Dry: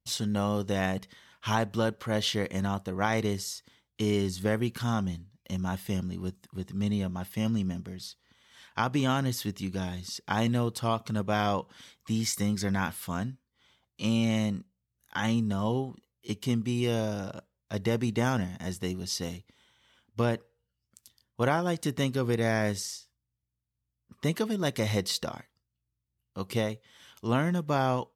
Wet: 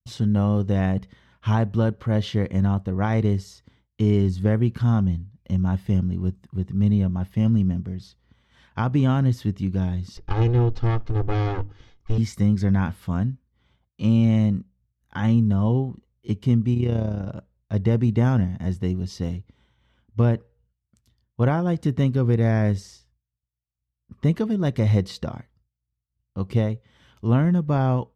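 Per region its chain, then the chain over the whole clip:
10.17–12.18 s: comb filter that takes the minimum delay 2.4 ms + steep low-pass 6.4 kHz + hum notches 50/100/150/200/250/300 Hz
16.74–17.28 s: treble shelf 6.5 kHz -5.5 dB + AM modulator 32 Hz, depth 40%
whole clip: RIAA curve playback; expander -59 dBFS

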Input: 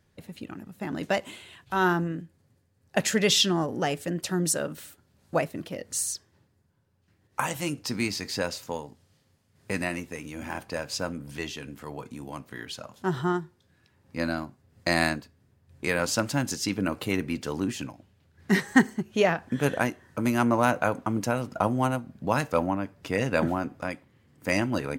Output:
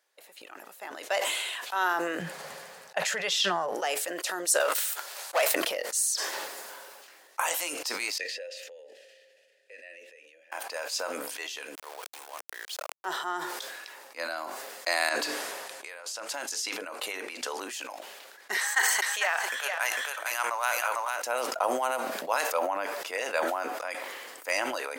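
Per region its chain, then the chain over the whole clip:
2.19–3.75 s: low-pass 2.8 kHz 6 dB/octave + resonant low shelf 220 Hz +9.5 dB, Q 3
4.60–5.55 s: high-pass 620 Hz + waveshaping leveller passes 3 + doubling 14 ms -13.5 dB
8.18–10.52 s: vowel filter e + peaking EQ 1 kHz -12.5 dB 1.9 oct + upward compressor, threshold -51 dBFS
11.75–13.05 s: high-pass 290 Hz 24 dB/octave + small samples zeroed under -40.5 dBFS
15.09–17.60 s: low-pass 12 kHz + hum notches 50/100/150/200/250/300/350/400/450 Hz + compressor with a negative ratio -37 dBFS
18.57–21.23 s: high-pass 1 kHz + delay 450 ms -5 dB
whole clip: high-pass 530 Hz 24 dB/octave; treble shelf 5.8 kHz +5.5 dB; decay stretcher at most 25 dB/s; trim -2.5 dB

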